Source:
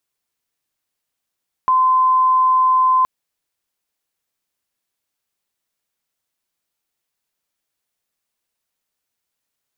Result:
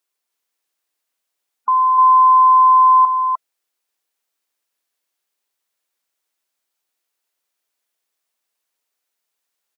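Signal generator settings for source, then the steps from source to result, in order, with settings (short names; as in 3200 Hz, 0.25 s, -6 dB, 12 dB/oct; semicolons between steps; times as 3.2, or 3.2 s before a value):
tone sine 1030 Hz -11 dBFS 1.37 s
spectral gate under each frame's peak -25 dB strong; HPF 330 Hz 12 dB/oct; echo 0.303 s -3.5 dB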